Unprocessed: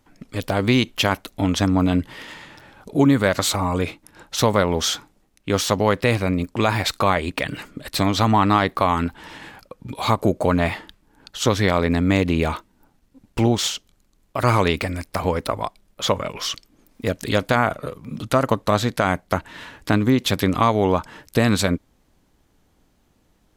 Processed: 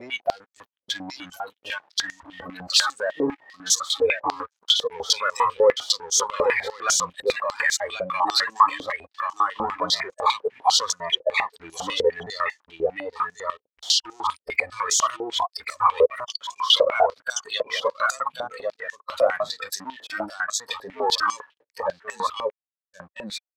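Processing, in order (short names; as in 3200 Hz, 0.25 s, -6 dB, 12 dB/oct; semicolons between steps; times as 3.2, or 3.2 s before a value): slices in reverse order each 0.223 s, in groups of 4; sample leveller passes 5; spectral noise reduction 19 dB; gate with hold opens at -44 dBFS; on a send: echo 1.084 s -4 dB; on the sum: stepped band-pass 10 Hz 520–6500 Hz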